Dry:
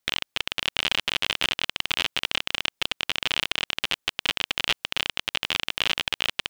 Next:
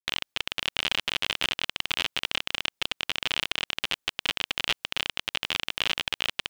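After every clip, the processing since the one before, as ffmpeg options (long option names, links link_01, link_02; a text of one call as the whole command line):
ffmpeg -i in.wav -af "agate=range=-33dB:threshold=-41dB:ratio=3:detection=peak,volume=-2.5dB" out.wav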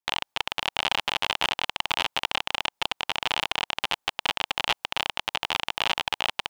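ffmpeg -i in.wav -af "equalizer=frequency=860:width_type=o:width=0.86:gain=12.5" out.wav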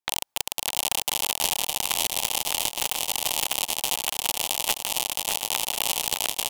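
ffmpeg -i in.wav -filter_complex "[0:a]aeval=exprs='(mod(2.37*val(0)+1,2)-1)/2.37':channel_layout=same,asplit=2[link_01][link_02];[link_02]aecho=0:1:610|1037|1336|1545|1692:0.631|0.398|0.251|0.158|0.1[link_03];[link_01][link_03]amix=inputs=2:normalize=0" out.wav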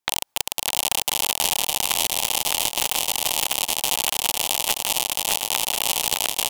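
ffmpeg -i in.wav -af "alimiter=limit=-11.5dB:level=0:latency=1:release=62,volume=7dB" out.wav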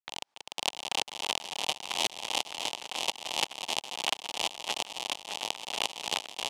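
ffmpeg -i in.wav -af "highpass=180,lowpass=5200,aeval=exprs='val(0)*pow(10,-21*if(lt(mod(-2.9*n/s,1),2*abs(-2.9)/1000),1-mod(-2.9*n/s,1)/(2*abs(-2.9)/1000),(mod(-2.9*n/s,1)-2*abs(-2.9)/1000)/(1-2*abs(-2.9)/1000))/20)':channel_layout=same" out.wav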